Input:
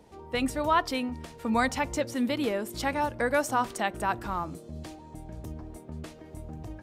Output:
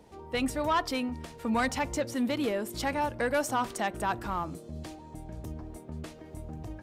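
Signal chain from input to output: soft clip -20 dBFS, distortion -15 dB

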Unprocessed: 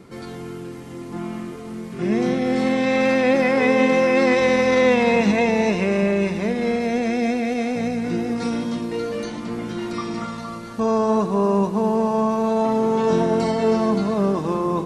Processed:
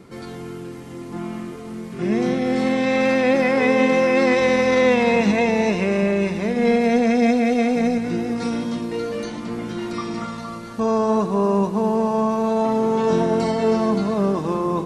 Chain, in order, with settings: 6.56–7.98 comb 4.3 ms, depth 73%

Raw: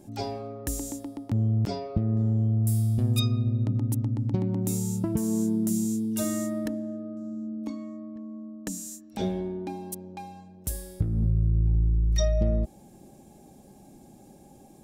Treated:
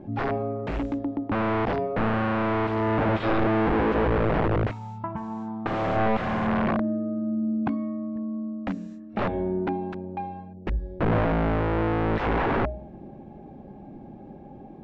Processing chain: 10.53–11.12 formant sharpening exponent 1.5; de-hum 61.87 Hz, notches 12; in parallel at -3.5 dB: soft clip -23 dBFS, distortion -13 dB; 4.71–5.66 on the sum: resonant low shelf 620 Hz -13.5 dB, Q 3; wrapped overs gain 22 dB; Bessel low-pass 1600 Hz, order 4; gain +4.5 dB

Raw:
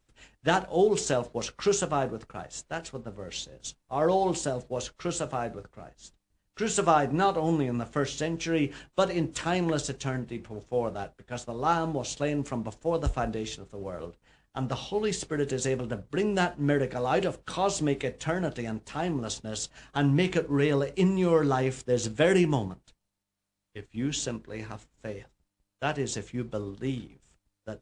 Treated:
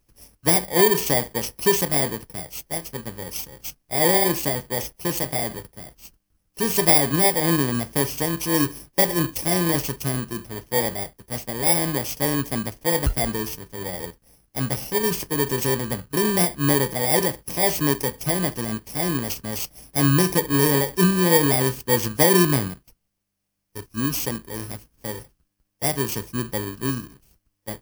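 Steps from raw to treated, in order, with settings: FFT order left unsorted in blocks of 32 samples; gain +6 dB

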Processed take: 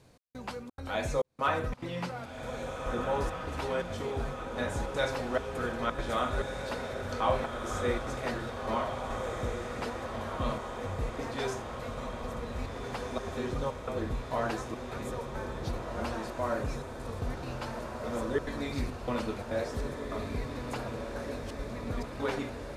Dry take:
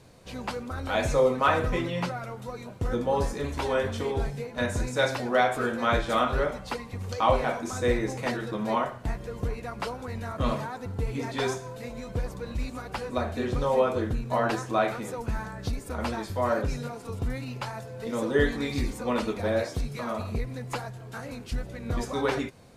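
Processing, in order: step gate "xx..xxxx.xxx" 173 bpm -60 dB; diffused feedback echo 1.688 s, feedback 67%, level -5 dB; gain -6 dB

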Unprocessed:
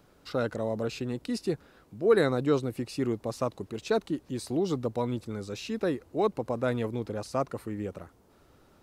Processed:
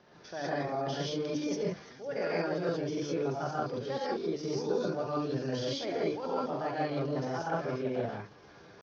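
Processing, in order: reverse; compressor 8:1, threshold -35 dBFS, peak gain reduction 18 dB; reverse; HPF 120 Hz 6 dB/oct; on a send: thin delay 0.171 s, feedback 84%, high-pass 2500 Hz, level -17.5 dB; on the sum: non-linear reverb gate 0.21 s rising, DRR -7 dB; pitch shift +3.5 st; steep low-pass 6000 Hz 72 dB/oct; notches 50/100/150/200/250/300 Hz

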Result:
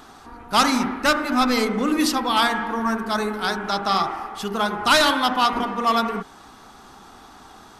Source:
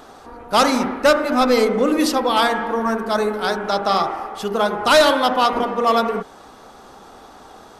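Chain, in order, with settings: bell 530 Hz -12 dB 0.74 oct

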